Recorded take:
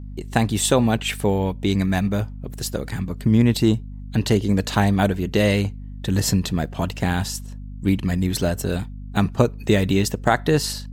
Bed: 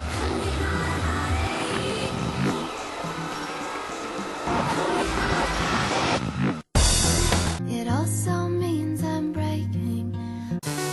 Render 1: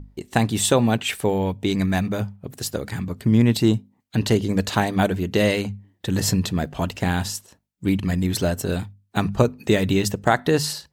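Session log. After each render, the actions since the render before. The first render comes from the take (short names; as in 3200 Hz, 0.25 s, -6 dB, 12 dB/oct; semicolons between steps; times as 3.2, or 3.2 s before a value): notches 50/100/150/200/250 Hz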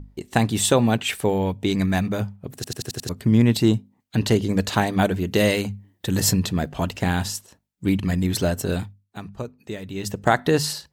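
2.55 stutter in place 0.09 s, 6 plays; 5.27–6.33 high shelf 8200 Hz +8 dB; 8.84–10.27 dip -14 dB, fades 0.34 s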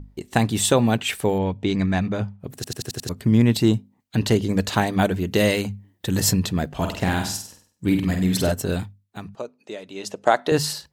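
1.38–2.4 air absorption 86 m; 6.75–8.52 flutter echo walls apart 8.3 m, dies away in 0.49 s; 9.35–10.52 speaker cabinet 340–10000 Hz, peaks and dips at 610 Hz +5 dB, 1800 Hz -5 dB, 8200 Hz -5 dB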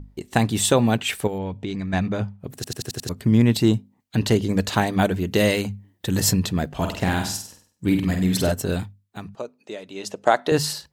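1.27–1.93 compressor, threshold -24 dBFS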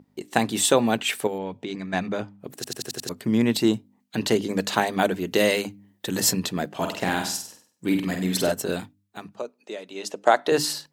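HPF 230 Hz 12 dB/oct; notches 50/100/150/200/250/300 Hz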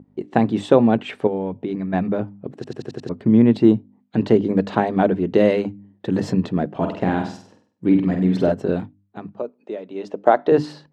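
LPF 3400 Hz 12 dB/oct; tilt shelf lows +8.5 dB, about 1100 Hz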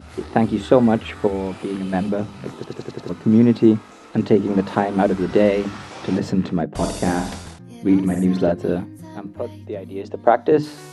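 add bed -12 dB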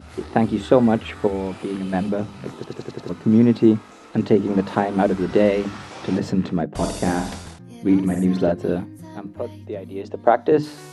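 gain -1 dB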